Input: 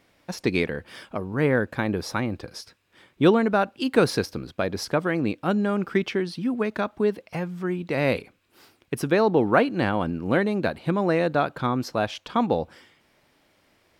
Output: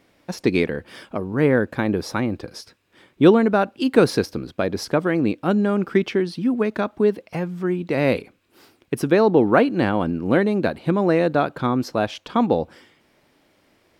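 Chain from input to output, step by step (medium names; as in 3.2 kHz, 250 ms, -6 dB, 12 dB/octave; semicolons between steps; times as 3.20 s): peaking EQ 310 Hz +4.5 dB 1.8 oct; trim +1 dB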